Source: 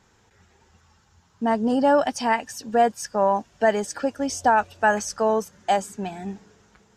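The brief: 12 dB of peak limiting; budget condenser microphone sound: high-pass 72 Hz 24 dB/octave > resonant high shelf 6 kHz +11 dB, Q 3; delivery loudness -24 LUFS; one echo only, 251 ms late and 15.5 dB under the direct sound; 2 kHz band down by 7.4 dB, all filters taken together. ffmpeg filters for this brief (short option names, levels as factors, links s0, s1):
-af "equalizer=f=2000:t=o:g=-9,alimiter=limit=0.0841:level=0:latency=1,highpass=f=72:w=0.5412,highpass=f=72:w=1.3066,highshelf=f=6000:t=q:w=3:g=11,aecho=1:1:251:0.168,volume=1.26"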